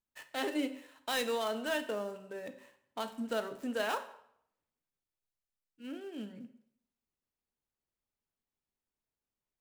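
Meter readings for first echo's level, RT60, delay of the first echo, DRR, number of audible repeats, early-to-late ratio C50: none, 0.70 s, none, 8.5 dB, none, 12.5 dB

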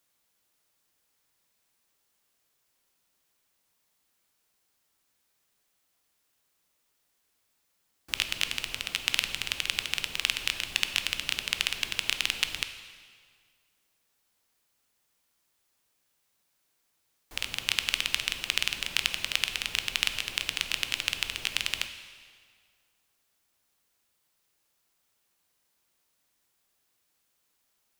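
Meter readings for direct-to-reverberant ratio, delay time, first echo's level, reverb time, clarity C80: 8.0 dB, none, none, 1.8 s, 11.0 dB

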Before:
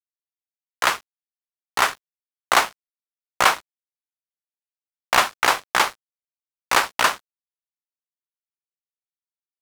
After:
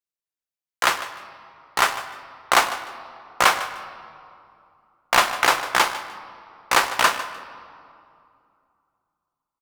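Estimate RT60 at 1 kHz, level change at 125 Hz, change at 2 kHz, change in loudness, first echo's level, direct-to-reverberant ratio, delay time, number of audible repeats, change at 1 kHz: 2.6 s, +0.5 dB, +0.5 dB, 0.0 dB, -14.5 dB, 9.0 dB, 0.151 s, 2, +0.5 dB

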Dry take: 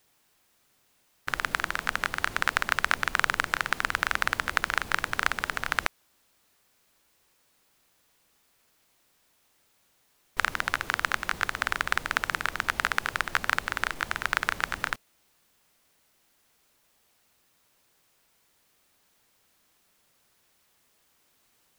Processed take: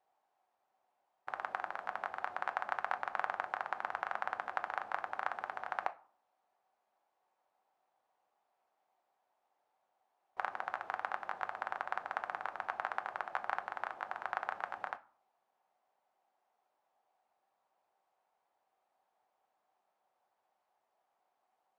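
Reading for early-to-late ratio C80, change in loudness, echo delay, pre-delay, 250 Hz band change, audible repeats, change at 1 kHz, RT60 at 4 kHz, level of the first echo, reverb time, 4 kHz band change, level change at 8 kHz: 24.5 dB, -11.5 dB, none, 5 ms, -18.0 dB, none, -6.5 dB, 0.30 s, none, 0.45 s, -23.0 dB, under -25 dB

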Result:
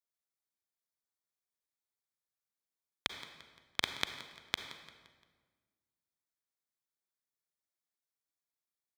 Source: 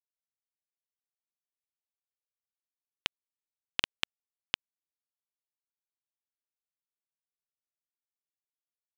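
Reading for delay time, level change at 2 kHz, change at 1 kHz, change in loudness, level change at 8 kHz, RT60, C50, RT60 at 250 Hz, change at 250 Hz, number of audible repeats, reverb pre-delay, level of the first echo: 0.173 s, -2.0 dB, +1.0 dB, -3.5 dB, +0.5 dB, 1.5 s, 8.0 dB, 1.8 s, +1.0 dB, 3, 34 ms, -17.0 dB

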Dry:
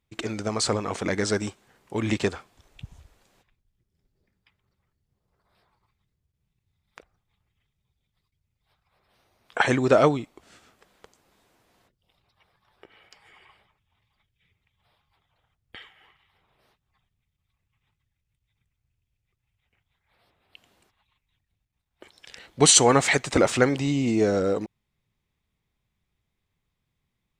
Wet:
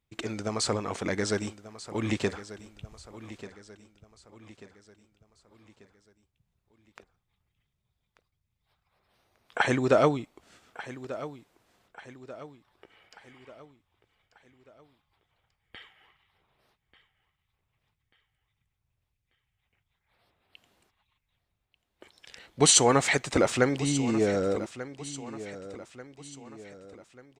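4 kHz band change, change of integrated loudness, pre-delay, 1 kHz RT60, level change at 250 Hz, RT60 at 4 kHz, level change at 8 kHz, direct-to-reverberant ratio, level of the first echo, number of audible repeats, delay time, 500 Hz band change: -3.5 dB, -4.5 dB, none, none, -3.5 dB, none, -3.5 dB, none, -15.0 dB, 3, 1.189 s, -3.5 dB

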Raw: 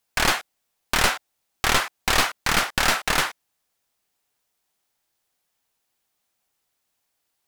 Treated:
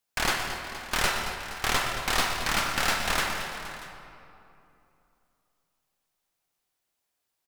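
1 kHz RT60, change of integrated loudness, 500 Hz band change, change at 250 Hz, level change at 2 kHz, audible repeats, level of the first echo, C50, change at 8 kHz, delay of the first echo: 2.7 s, -5.5 dB, -4.0 dB, -4.5 dB, -4.5 dB, 4, -11.0 dB, 2.5 dB, -5.0 dB, 0.12 s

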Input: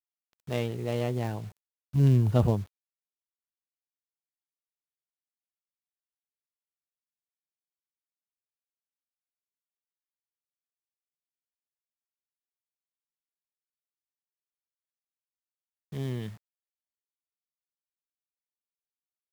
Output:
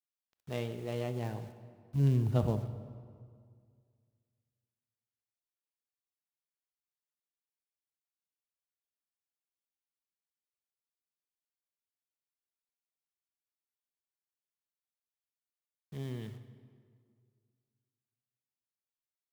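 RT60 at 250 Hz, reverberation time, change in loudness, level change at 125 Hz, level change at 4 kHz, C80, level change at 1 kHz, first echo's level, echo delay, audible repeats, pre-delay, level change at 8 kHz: 2.1 s, 2.0 s, -6.5 dB, -6.0 dB, -6.0 dB, 12.0 dB, -6.0 dB, -21.0 dB, 0.125 s, 1, 23 ms, n/a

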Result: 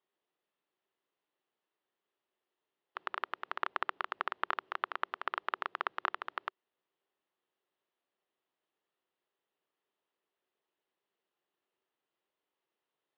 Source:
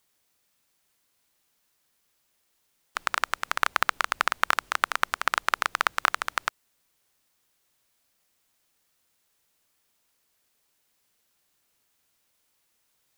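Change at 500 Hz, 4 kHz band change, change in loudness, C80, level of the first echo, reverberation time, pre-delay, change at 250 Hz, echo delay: -6.5 dB, -15.0 dB, -11.0 dB, none, none, none, none, -7.0 dB, none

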